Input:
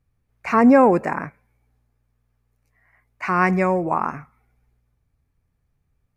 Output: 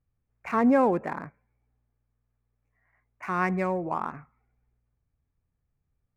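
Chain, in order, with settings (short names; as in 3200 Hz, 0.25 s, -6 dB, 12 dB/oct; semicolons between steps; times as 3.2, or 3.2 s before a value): Wiener smoothing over 9 samples; 1.15–3.28 dynamic EQ 2900 Hz, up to -4 dB, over -43 dBFS, Q 0.76; gain -8 dB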